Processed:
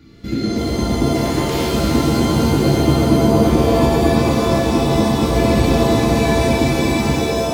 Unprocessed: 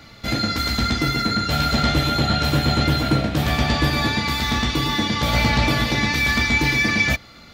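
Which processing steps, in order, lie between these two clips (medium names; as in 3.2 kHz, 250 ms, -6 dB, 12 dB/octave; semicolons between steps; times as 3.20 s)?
1.14–1.67 s: spectral peaks clipped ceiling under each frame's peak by 22 dB; resonant low shelf 480 Hz +10 dB, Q 3; pitch-shifted reverb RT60 2.9 s, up +7 st, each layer -2 dB, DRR -2.5 dB; trim -11 dB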